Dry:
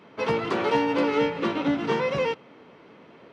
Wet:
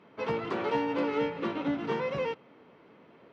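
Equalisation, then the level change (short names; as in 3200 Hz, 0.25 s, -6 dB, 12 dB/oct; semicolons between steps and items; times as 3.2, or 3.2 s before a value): LPF 3400 Hz 6 dB/oct; -6.0 dB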